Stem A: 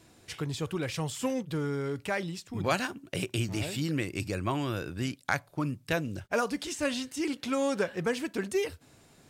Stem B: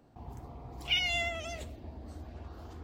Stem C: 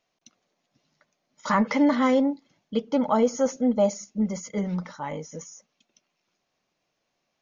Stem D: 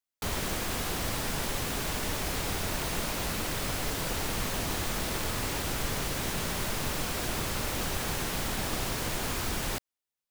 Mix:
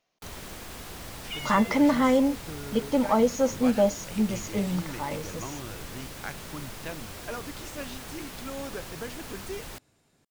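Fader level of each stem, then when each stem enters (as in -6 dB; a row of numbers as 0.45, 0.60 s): -9.0, -8.5, -0.5, -9.0 dB; 0.95, 0.40, 0.00, 0.00 s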